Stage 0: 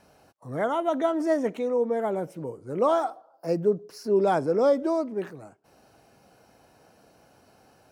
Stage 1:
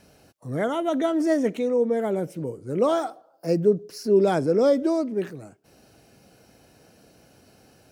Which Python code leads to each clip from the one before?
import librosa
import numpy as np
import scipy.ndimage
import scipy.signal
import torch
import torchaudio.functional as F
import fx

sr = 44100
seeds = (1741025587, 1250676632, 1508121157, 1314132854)

y = fx.peak_eq(x, sr, hz=950.0, db=-10.0, octaves=1.4)
y = F.gain(torch.from_numpy(y), 6.0).numpy()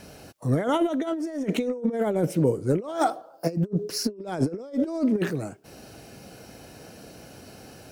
y = fx.over_compress(x, sr, threshold_db=-28.0, ratio=-0.5)
y = F.gain(torch.from_numpy(y), 3.5).numpy()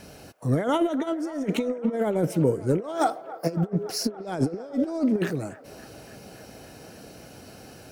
y = fx.echo_wet_bandpass(x, sr, ms=282, feedback_pct=77, hz=1100.0, wet_db=-15.5)